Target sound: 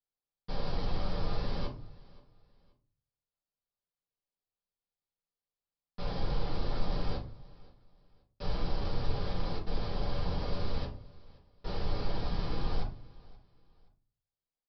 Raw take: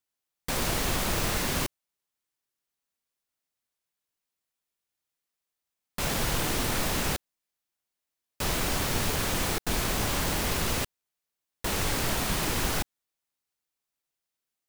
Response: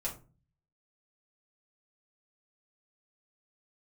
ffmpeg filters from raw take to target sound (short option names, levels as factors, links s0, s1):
-filter_complex "[0:a]equalizer=f=2100:t=o:w=1.1:g=-11,aresample=11025,asoftclip=type=tanh:threshold=0.0631,aresample=44100,aecho=1:1:526|1052:0.075|0.0232[s0];[1:a]atrim=start_sample=2205,asetrate=38808,aresample=44100[s1];[s0][s1]afir=irnorm=-1:irlink=0,volume=0.376"